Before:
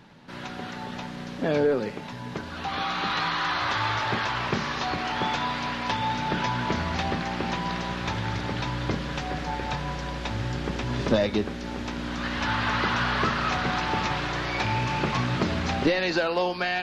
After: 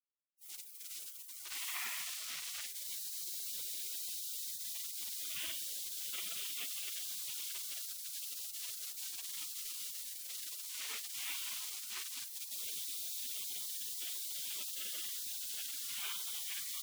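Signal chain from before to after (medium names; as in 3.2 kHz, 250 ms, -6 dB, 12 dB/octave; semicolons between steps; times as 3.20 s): high-pass 400 Hz 6 dB/octave; distance through air 440 m; LPC vocoder at 8 kHz whisper; feedback delay 777 ms, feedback 48%, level -13.5 dB; reverberation RT60 1.7 s, pre-delay 77 ms; bit crusher 8-bit; spectral gate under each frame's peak -30 dB weak; trim +11.5 dB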